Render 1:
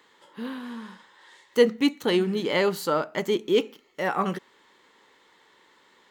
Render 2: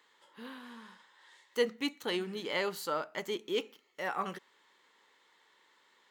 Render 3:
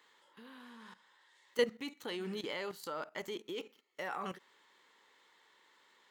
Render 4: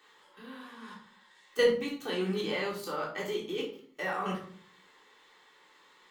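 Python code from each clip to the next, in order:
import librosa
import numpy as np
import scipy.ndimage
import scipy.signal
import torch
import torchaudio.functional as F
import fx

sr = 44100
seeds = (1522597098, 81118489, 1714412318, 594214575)

y1 = fx.low_shelf(x, sr, hz=450.0, db=-10.0)
y1 = F.gain(torch.from_numpy(y1), -6.5).numpy()
y2 = fx.level_steps(y1, sr, step_db=14)
y2 = F.gain(torch.from_numpy(y2), 2.5).numpy()
y3 = fx.room_shoebox(y2, sr, seeds[0], volume_m3=440.0, walls='furnished', distance_m=3.6)
y3 = F.gain(torch.from_numpy(y3), 1.0).numpy()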